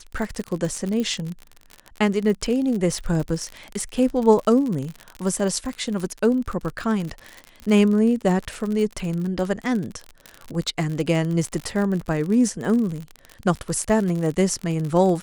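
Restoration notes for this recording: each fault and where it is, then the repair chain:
surface crackle 50 per second −26 dBFS
0:01.00: click −16 dBFS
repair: click removal

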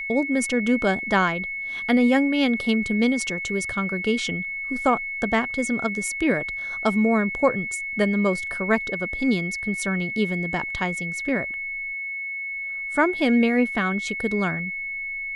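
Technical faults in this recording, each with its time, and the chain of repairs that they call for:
whistle 2,200 Hz −28 dBFS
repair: notch filter 2,200 Hz, Q 30

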